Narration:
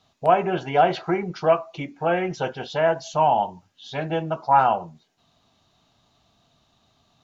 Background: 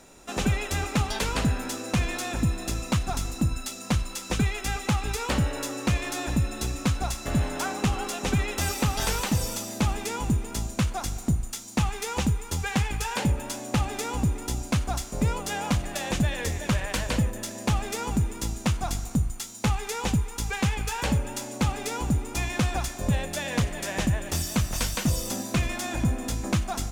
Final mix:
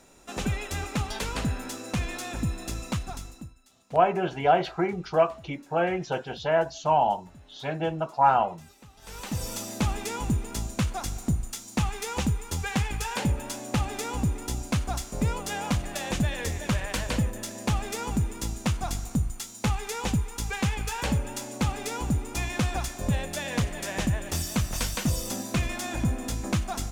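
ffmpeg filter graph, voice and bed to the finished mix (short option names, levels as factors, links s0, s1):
-filter_complex "[0:a]adelay=3700,volume=0.708[s0];[1:a]volume=11.2,afade=t=out:st=2.87:d=0.67:silence=0.0749894,afade=t=in:st=9.02:d=0.6:silence=0.0562341[s1];[s0][s1]amix=inputs=2:normalize=0"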